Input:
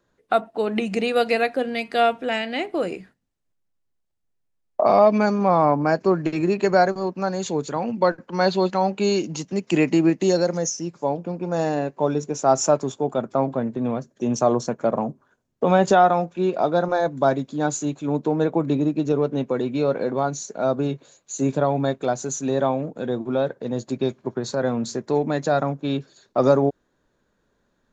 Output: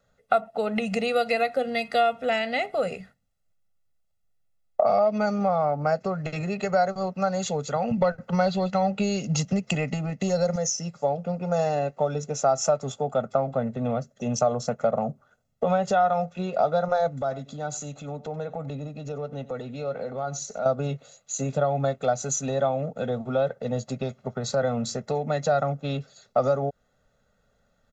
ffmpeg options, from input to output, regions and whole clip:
-filter_complex "[0:a]asettb=1/sr,asplit=3[s0][s1][s2];[s0]atrim=end=7.914[s3];[s1]atrim=start=7.91:end=10.56,asetpts=PTS-STARTPTS,afade=t=in:d=0.004:c=qsin,afade=t=out:st=2.646:d=0.004:c=qsin,equalizer=f=80:w=0.4:g=7,acontrast=28[s4];[s2]atrim=start=10.556[s5];[s3][s4]acrossfade=d=0.004:c1=hsin:c2=qsin[s6];[s6][s5]acrossfade=d=0.004:c1=qsin:c2=hsin,asettb=1/sr,asplit=3[s7][s8][s9];[s7]atrim=end=17.214[s10];[s8]atrim=start=17.21:end=20.66,asetpts=PTS-STARTPTS,afade=t=in:d=0.004:c=qsin,afade=t=out:st=3.446:d=0.004:c=qsin,acompressor=threshold=0.0251:ratio=2.5:attack=3.2:release=140:knee=1:detection=peak,aecho=1:1:93:0.126,atrim=end_sample=152145[s11];[s9]atrim=start=20.656[s12];[s10][s11]acrossfade=d=0.004:c1=hsin:c2=qsin[s13];[s13][s12]acrossfade=d=0.004:c1=qsin:c2=hsin,acompressor=threshold=0.0891:ratio=6,aecho=1:1:1.5:0.97,volume=0.841"

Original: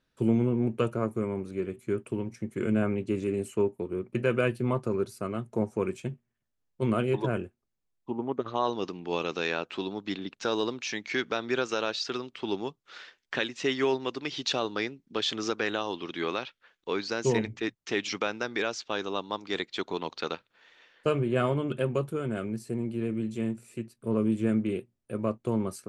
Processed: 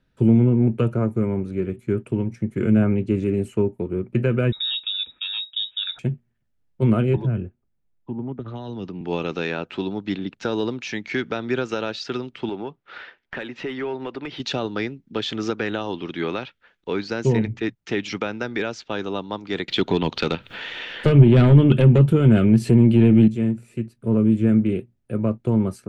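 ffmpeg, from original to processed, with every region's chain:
-filter_complex "[0:a]asettb=1/sr,asplit=3[s0][s1][s2];[s0]atrim=end=4.524[s3];[s1]atrim=start=4.52:end=5.99,asetpts=PTS-STARTPTS,afade=t=in:d=0.004:c=qsin,afade=t=out:st=1.466:d=0.004:c=qsin,lowshelf=f=170:g=9.5,lowpass=f=3300:t=q:w=0.5098,lowpass=f=3300:t=q:w=0.6013,lowpass=f=3300:t=q:w=0.9,lowpass=f=3300:t=q:w=2.563,afreqshift=-3900[s4];[s2]atrim=start=5.986[s5];[s3][s4]acrossfade=d=0.004:c1=hsin:c2=qsin[s6];[s6][s5]acrossfade=d=0.004:c1=qsin:c2=hsin,asettb=1/sr,asplit=3[s7][s8][s9];[s7]atrim=end=7.164[s10];[s8]atrim=start=7.16:end=9.01,asetpts=PTS-STARTPTS,afade=t=in:d=0.004:c=qsin,afade=t=out:st=1.846:d=0.004:c=qsin,aemphasis=mode=reproduction:type=75kf,acrossover=split=220|3000[s11][s12][s13];[s12]acompressor=threshold=0.01:ratio=4:attack=3.2:release=140:knee=2.83:detection=peak[s14];[s11][s14][s13]amix=inputs=3:normalize=0[s15];[s9]atrim=start=9.006[s16];[s10][s15]acrossfade=d=0.004:c1=hsin:c2=qsin[s17];[s17][s16]acrossfade=d=0.004:c1=qsin:c2=hsin,asettb=1/sr,asplit=3[s18][s19][s20];[s18]atrim=end=12.494[s21];[s19]atrim=start=12.49:end=14.4,asetpts=PTS-STARTPTS,afade=t=in:d=0.004:c=qsin,afade=t=out:st=1.906:d=0.004:c=qsin,lowpass=5100,acompressor=threshold=0.0158:ratio=2.5:attack=3.2:release=140:knee=1:detection=peak,asplit=2[s22][s23];[s23]highpass=f=720:p=1,volume=5.01,asoftclip=type=tanh:threshold=0.1[s24];[s22][s24]amix=inputs=2:normalize=0,lowpass=f=1400:p=1,volume=0.501[s25];[s20]atrim=start=14.396[s26];[s21][s25]acrossfade=d=0.004:c1=hsin:c2=qsin[s27];[s27][s26]acrossfade=d=0.004:c1=qsin:c2=hsin,asettb=1/sr,asplit=3[s28][s29][s30];[s28]atrim=end=19.684[s31];[s29]atrim=start=19.68:end=23.28,asetpts=PTS-STARTPTS,afade=t=in:d=0.004:c=qsin,afade=t=out:st=3.596:d=0.004:c=qsin,aeval=exprs='0.211*sin(PI/2*2*val(0)/0.211)':c=same,equalizer=f=3100:t=o:w=0.75:g=7.5,acompressor=mode=upward:threshold=0.0562:ratio=2.5:attack=3.2:release=140:knee=2.83:detection=peak[s32];[s30]atrim=start=23.276[s33];[s31][s32]acrossfade=d=0.004:c1=hsin:c2=qsin[s34];[s34][s33]acrossfade=d=0.004:c1=qsin:c2=hsin,bass=f=250:g=8,treble=f=4000:g=-8,bandreject=f=1100:w=9.6,acrossover=split=340[s35][s36];[s36]acompressor=threshold=0.0447:ratio=6[s37];[s35][s37]amix=inputs=2:normalize=0,volume=1.68"

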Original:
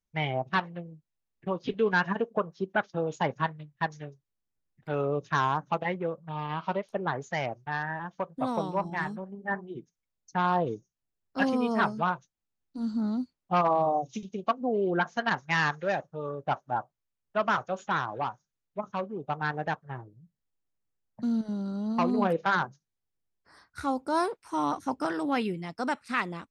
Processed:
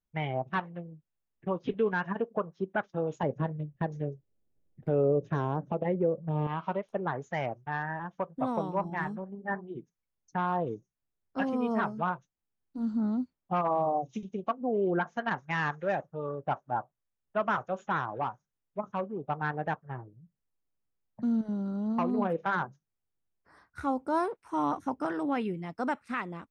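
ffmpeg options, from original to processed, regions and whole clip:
-filter_complex "[0:a]asettb=1/sr,asplit=3[s0][s1][s2];[s0]atrim=end=3.234[s3];[s1]atrim=start=3.23:end=6.47,asetpts=PTS-STARTPTS,afade=t=in:d=0.004:c=qsin,afade=t=out:st=3.236:d=0.004:c=qsin,lowshelf=f=750:t=q:w=1.5:g=10.5,acompressor=threshold=0.0447:ratio=1.5:attack=3.2:release=140:knee=1:detection=peak[s4];[s2]atrim=start=6.466[s5];[s3][s4]acrossfade=d=0.004:c1=hsin:c2=qsin[s6];[s6][s5]acrossfade=d=0.004:c1=qsin:c2=hsin,equalizer=f=4500:t=o:w=0.45:g=-6.5,alimiter=limit=0.126:level=0:latency=1:release=396,highshelf=f=2900:g=-10"

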